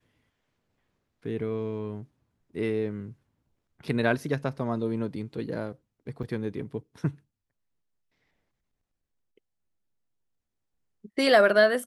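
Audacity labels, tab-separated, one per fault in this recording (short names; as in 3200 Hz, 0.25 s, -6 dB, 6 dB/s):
6.230000	6.240000	gap 6.9 ms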